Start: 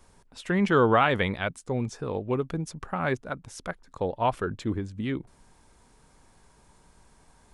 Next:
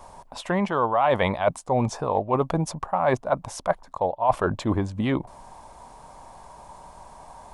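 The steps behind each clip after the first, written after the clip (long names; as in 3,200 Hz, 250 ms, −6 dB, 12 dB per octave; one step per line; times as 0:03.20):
flat-topped bell 790 Hz +13.5 dB 1.2 octaves
reversed playback
downward compressor 12 to 1, threshold −25 dBFS, peak gain reduction 19 dB
reversed playback
level +7 dB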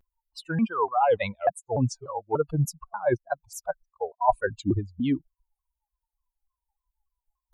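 spectral dynamics exaggerated over time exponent 3
dynamic equaliser 2,900 Hz, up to −6 dB, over −46 dBFS, Q 0.8
pitch modulation by a square or saw wave saw down 3.4 Hz, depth 250 cents
level +4.5 dB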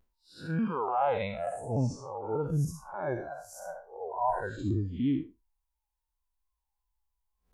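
spectrum smeared in time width 167 ms
level +1.5 dB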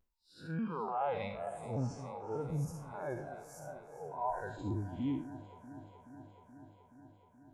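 delay that swaps between a low-pass and a high-pass 213 ms, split 870 Hz, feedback 86%, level −14 dB
level −7 dB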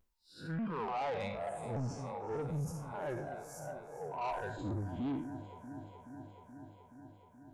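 soft clipping −36 dBFS, distortion −11 dB
level +3.5 dB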